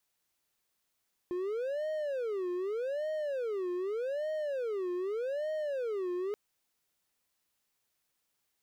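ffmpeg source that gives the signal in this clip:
-f lavfi -i "aevalsrc='0.0335*(1-4*abs(mod((489*t-134/(2*PI*0.83)*sin(2*PI*0.83*t))+0.25,1)-0.5))':d=5.03:s=44100"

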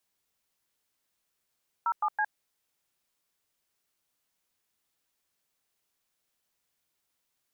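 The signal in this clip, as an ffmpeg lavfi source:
-f lavfi -i "aevalsrc='0.0447*clip(min(mod(t,0.163),0.061-mod(t,0.163))/0.002,0,1)*(eq(floor(t/0.163),0)*(sin(2*PI*941*mod(t,0.163))+sin(2*PI*1336*mod(t,0.163)))+eq(floor(t/0.163),1)*(sin(2*PI*852*mod(t,0.163))+sin(2*PI*1209*mod(t,0.163)))+eq(floor(t/0.163),2)*(sin(2*PI*852*mod(t,0.163))+sin(2*PI*1633*mod(t,0.163))))':d=0.489:s=44100"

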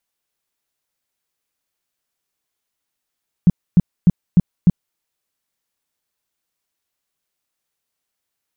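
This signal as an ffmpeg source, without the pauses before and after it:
-f lavfi -i "aevalsrc='0.531*sin(2*PI*176*mod(t,0.3))*lt(mod(t,0.3),5/176)':d=1.5:s=44100"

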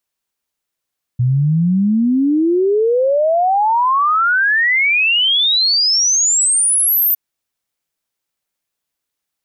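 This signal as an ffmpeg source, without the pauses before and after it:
-f lavfi -i "aevalsrc='0.282*clip(min(t,5.96-t)/0.01,0,1)*sin(2*PI*120*5.96/log(14000/120)*(exp(log(14000/120)*t/5.96)-1))':d=5.96:s=44100"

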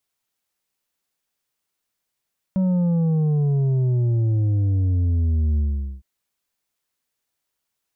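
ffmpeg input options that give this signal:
-f lavfi -i "aevalsrc='0.133*clip((3.46-t)/0.44,0,1)*tanh(2*sin(2*PI*190*3.46/log(65/190)*(exp(log(65/190)*t/3.46)-1)))/tanh(2)':d=3.46:s=44100"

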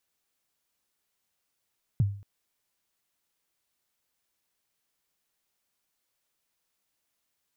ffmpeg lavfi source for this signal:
-f lavfi -i "aevalsrc='0.141*pow(10,-3*t/0.45)*sin(2*PI*(150*0.027/log(100/150)*(exp(log(100/150)*min(t,0.027)/0.027)-1)+100*max(t-0.027,0)))':d=0.23:s=44100"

